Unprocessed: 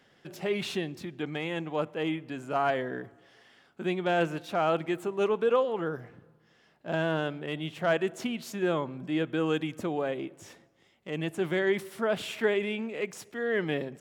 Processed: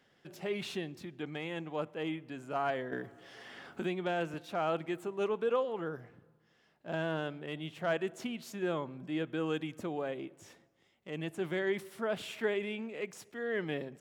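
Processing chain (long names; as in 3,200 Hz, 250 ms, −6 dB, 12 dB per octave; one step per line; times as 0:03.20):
0:02.92–0:04.34: multiband upward and downward compressor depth 70%
level −6 dB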